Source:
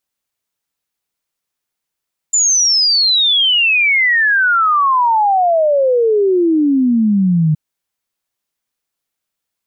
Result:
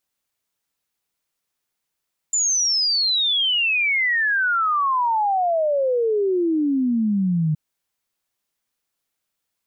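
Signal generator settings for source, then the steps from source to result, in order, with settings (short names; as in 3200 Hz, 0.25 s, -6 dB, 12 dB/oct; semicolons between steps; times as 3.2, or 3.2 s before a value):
log sweep 7200 Hz -> 150 Hz 5.22 s -9.5 dBFS
limiter -17 dBFS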